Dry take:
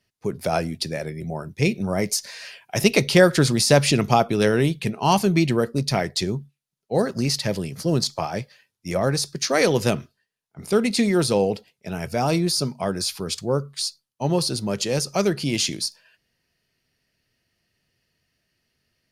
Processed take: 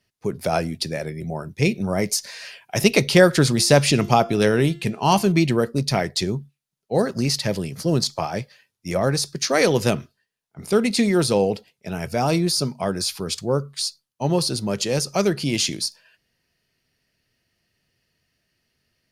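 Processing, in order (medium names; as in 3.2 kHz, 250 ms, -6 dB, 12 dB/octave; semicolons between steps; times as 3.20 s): 3.50–5.32 s: de-hum 344 Hz, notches 25; trim +1 dB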